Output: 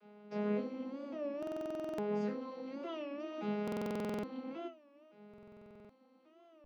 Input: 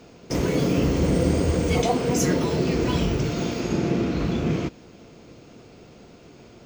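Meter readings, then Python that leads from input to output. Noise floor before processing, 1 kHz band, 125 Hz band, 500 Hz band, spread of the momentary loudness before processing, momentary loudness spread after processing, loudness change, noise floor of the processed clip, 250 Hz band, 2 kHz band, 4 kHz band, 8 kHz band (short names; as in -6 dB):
-49 dBFS, -15.0 dB, -26.0 dB, -13.5 dB, 5 LU, 20 LU, -16.5 dB, -65 dBFS, -16.0 dB, -17.5 dB, -22.5 dB, under -30 dB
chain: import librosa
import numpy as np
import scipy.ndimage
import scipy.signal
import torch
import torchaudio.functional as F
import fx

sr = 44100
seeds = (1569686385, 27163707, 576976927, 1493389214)

y = fx.vocoder_arp(x, sr, chord='major triad', root=56, every_ms=568)
y = scipy.signal.sosfilt(scipy.signal.butter(4, 150.0, 'highpass', fs=sr, output='sos'), y)
y = fx.peak_eq(y, sr, hz=270.0, db=-11.0, octaves=1.8)
y = fx.rider(y, sr, range_db=3, speed_s=0.5)
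y = fx.air_absorb(y, sr, metres=250.0)
y = fx.resonator_bank(y, sr, root=52, chord='major', decay_s=0.31)
y = fx.buffer_glitch(y, sr, at_s=(1.38, 3.63, 5.29), block=2048, repeats=12)
y = fx.record_warp(y, sr, rpm=33.33, depth_cents=160.0)
y = y * 10.0 ** (9.0 / 20.0)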